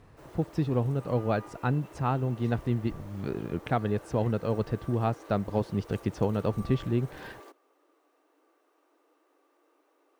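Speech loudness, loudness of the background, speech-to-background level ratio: -30.5 LUFS, -49.0 LUFS, 18.5 dB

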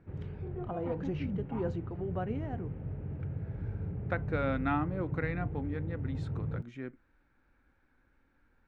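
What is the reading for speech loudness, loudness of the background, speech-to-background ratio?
-37.5 LUFS, -38.5 LUFS, 1.0 dB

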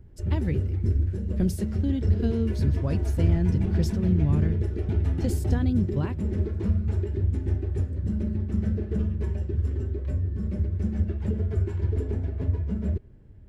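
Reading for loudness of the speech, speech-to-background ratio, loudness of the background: -29.5 LUFS, -2.0 dB, -27.5 LUFS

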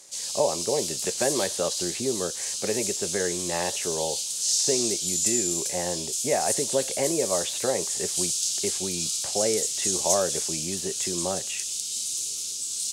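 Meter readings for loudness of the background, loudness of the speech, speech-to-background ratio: -26.5 LUFS, -30.5 LUFS, -4.0 dB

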